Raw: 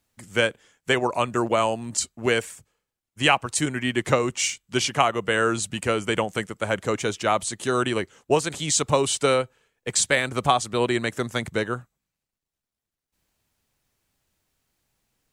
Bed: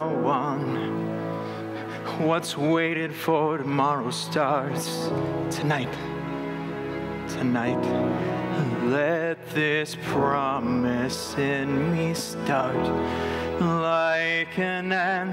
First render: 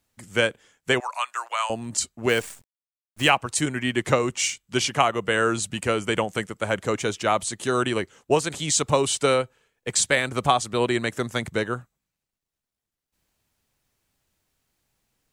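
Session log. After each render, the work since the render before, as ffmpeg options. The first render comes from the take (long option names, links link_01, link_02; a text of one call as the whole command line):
ffmpeg -i in.wav -filter_complex "[0:a]asettb=1/sr,asplit=3[link_01][link_02][link_03];[link_01]atrim=end=1.004[link_04];[link_02]atrim=start=1:end=1.7,asetpts=PTS-STARTPTS,afade=type=in:duration=0.004:curve=qsin,afade=type=out:start_time=0.696:duration=0.004:curve=qsin,highpass=frequency=950:width=0.5412,highpass=frequency=950:width=1.3066[link_05];[link_03]atrim=start=1.696[link_06];[link_04][link_05]acrossfade=duration=0.004:curve1=hsin:curve2=qsin[link_07];[link_07][link_06]acrossfade=duration=0.004:curve1=qsin:curve2=hsin,asettb=1/sr,asplit=3[link_08][link_09][link_10];[link_08]atrim=end=2.294[link_11];[link_09]atrim=start=2.29:end=3.3,asetpts=PTS-STARTPTS,afade=type=in:duration=0.004:curve=qsin,afade=type=out:start_time=1.006:duration=0.004:curve=qsin,acrusher=bits=7:dc=4:mix=0:aa=0.000001[link_12];[link_10]atrim=start=3.296[link_13];[link_11][link_12]acrossfade=duration=0.004:curve1=hsin:curve2=qsin[link_14];[link_14][link_13]acrossfade=duration=0.004:curve1=qsin:curve2=hsin" out.wav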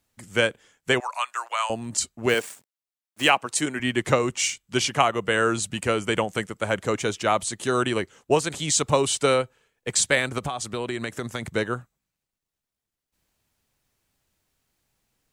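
ffmpeg -i in.wav -filter_complex "[0:a]asettb=1/sr,asplit=3[link_01][link_02][link_03];[link_01]atrim=end=2.344[link_04];[link_02]atrim=start=2.34:end=3.8,asetpts=PTS-STARTPTS,afade=type=in:duration=0.004:curve=qsin,afade=type=out:start_time=1.456:duration=0.004:curve=qsin,highpass=210[link_05];[link_03]atrim=start=3.796[link_06];[link_04][link_05]acrossfade=duration=0.004:curve1=hsin:curve2=qsin[link_07];[link_07][link_06]acrossfade=duration=0.004:curve1=qsin:curve2=hsin,asettb=1/sr,asplit=3[link_08][link_09][link_10];[link_08]atrim=end=10.384[link_11];[link_09]atrim=start=10.38:end=11.45,asetpts=PTS-STARTPTS,afade=type=in:duration=0.004:curve=qsin,afade=type=out:start_time=1.066:duration=0.004:curve=qsin,acompressor=threshold=-24dB:ratio=12:attack=3.2:release=140:knee=1:detection=peak[link_12];[link_10]atrim=start=11.446[link_13];[link_11][link_12]acrossfade=duration=0.004:curve1=hsin:curve2=qsin[link_14];[link_14][link_13]acrossfade=duration=0.004:curve1=qsin:curve2=hsin" out.wav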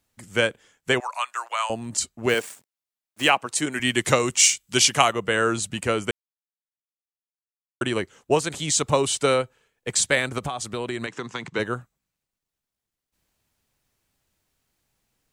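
ffmpeg -i in.wav -filter_complex "[0:a]asettb=1/sr,asplit=3[link_01][link_02][link_03];[link_01]atrim=end=3.724[link_04];[link_02]atrim=start=3.72:end=5.13,asetpts=PTS-STARTPTS,afade=type=in:duration=0.004:curve=qsin,afade=type=out:start_time=1.406:duration=0.004:curve=qsin,highshelf=frequency=3100:gain=11.5[link_05];[link_03]atrim=start=5.126[link_06];[link_04][link_05]acrossfade=duration=0.004:curve1=hsin:curve2=qsin[link_07];[link_07][link_06]acrossfade=duration=0.004:curve1=qsin:curve2=hsin,asplit=3[link_08][link_09][link_10];[link_08]afade=type=out:start_time=11.06:duration=0.02[link_11];[link_09]highpass=frequency=140:width=0.5412,highpass=frequency=140:width=1.3066,equalizer=frequency=220:width_type=q:width=4:gain=-4,equalizer=frequency=600:width_type=q:width=4:gain=-9,equalizer=frequency=1000:width_type=q:width=4:gain=7,equalizer=frequency=2700:width_type=q:width=4:gain=4,lowpass=frequency=6800:width=0.5412,lowpass=frequency=6800:width=1.3066,afade=type=in:start_time=11.06:duration=0.02,afade=type=out:start_time=11.58:duration=0.02[link_12];[link_10]afade=type=in:start_time=11.58:duration=0.02[link_13];[link_11][link_12][link_13]amix=inputs=3:normalize=0,asplit=3[link_14][link_15][link_16];[link_14]atrim=end=6.11,asetpts=PTS-STARTPTS,afade=type=out:start_time=6.106:duration=0.004:curve=hsin[link_17];[link_15]atrim=start=6.11:end=7.81,asetpts=PTS-STARTPTS,volume=0[link_18];[link_16]atrim=start=7.81,asetpts=PTS-STARTPTS,afade=type=in:duration=0.004:curve=hsin[link_19];[link_17][link_18][link_19]concat=n=3:v=0:a=1" out.wav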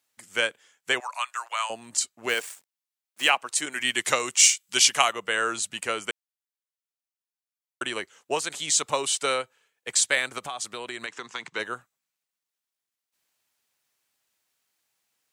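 ffmpeg -i in.wav -af "highpass=frequency=1100:poles=1" out.wav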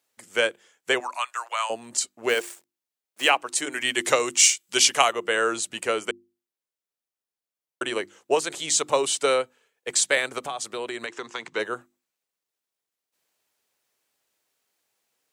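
ffmpeg -i in.wav -af "equalizer=frequency=430:width=0.87:gain=7.5,bandreject=frequency=50:width_type=h:width=6,bandreject=frequency=100:width_type=h:width=6,bandreject=frequency=150:width_type=h:width=6,bandreject=frequency=200:width_type=h:width=6,bandreject=frequency=250:width_type=h:width=6,bandreject=frequency=300:width_type=h:width=6,bandreject=frequency=350:width_type=h:width=6" out.wav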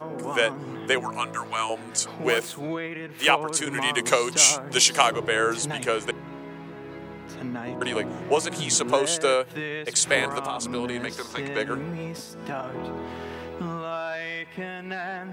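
ffmpeg -i in.wav -i bed.wav -filter_complex "[1:a]volume=-8.5dB[link_01];[0:a][link_01]amix=inputs=2:normalize=0" out.wav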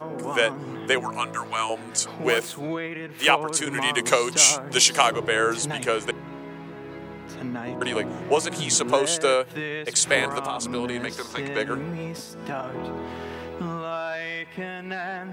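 ffmpeg -i in.wav -af "volume=1dB,alimiter=limit=-3dB:level=0:latency=1" out.wav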